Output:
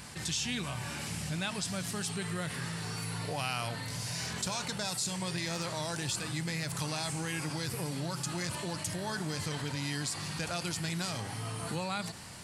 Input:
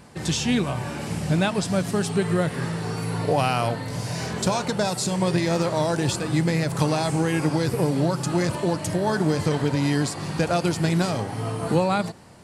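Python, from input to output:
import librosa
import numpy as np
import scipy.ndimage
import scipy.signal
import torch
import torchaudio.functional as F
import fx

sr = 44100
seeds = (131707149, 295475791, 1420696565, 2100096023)

y = fx.tone_stack(x, sr, knobs='5-5-5')
y = fx.env_flatten(y, sr, amount_pct=50)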